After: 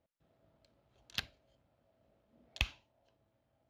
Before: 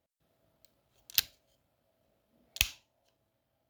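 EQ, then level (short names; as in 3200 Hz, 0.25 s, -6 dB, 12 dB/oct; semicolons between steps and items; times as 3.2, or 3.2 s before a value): dynamic EQ 6400 Hz, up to -7 dB, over -45 dBFS, Q 0.75; tape spacing loss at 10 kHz 21 dB; +3.0 dB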